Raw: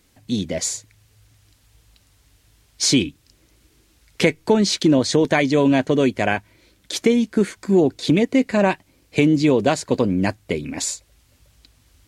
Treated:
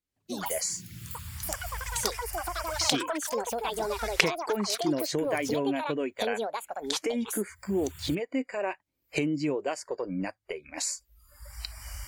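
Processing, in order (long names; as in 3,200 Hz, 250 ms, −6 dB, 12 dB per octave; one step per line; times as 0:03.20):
camcorder AGC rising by 31 dB per second
noise reduction from a noise print of the clip's start 21 dB
delay with pitch and tempo change per echo 93 ms, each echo +7 semitones, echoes 3
level −12.5 dB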